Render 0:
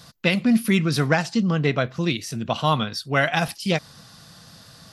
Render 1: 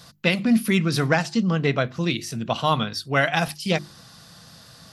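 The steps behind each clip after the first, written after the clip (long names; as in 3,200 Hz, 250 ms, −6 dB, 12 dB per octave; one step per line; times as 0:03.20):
mains-hum notches 50/100/150/200/250/300/350 Hz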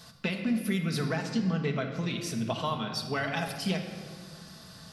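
downward compressor, threshold −25 dBFS, peak gain reduction 11 dB
rectangular room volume 2,800 cubic metres, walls mixed, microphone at 1.5 metres
level −4 dB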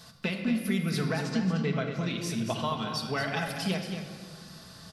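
single-tap delay 228 ms −8 dB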